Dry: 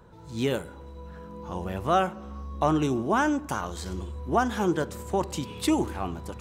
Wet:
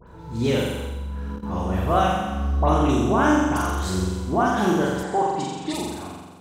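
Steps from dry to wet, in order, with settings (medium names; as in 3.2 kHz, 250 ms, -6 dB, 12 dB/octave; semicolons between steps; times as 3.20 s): fade out at the end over 1.75 s; in parallel at +0.5 dB: compression, threshold -32 dBFS, peak gain reduction 13.5 dB; on the sum: phase dispersion highs, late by 77 ms, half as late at 2.2 kHz; on a send: flutter echo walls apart 7.4 m, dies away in 1.3 s; 0.86–1.43 s: on the sum: level held to a coarse grid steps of 14 dB; 5.03–5.74 s: cabinet simulation 140–7800 Hz, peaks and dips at 780 Hz +8 dB, 1.8 kHz +5 dB, 2.7 kHz -4 dB, 5.9 kHz -5 dB; trim -1.5 dB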